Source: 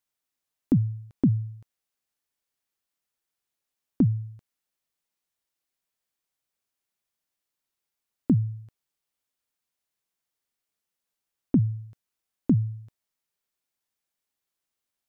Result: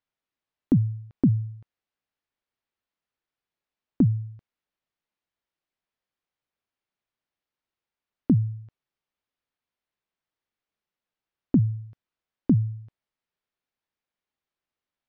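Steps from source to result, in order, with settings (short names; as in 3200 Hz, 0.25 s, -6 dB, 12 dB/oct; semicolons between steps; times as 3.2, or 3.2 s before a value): air absorption 210 m; gain +1.5 dB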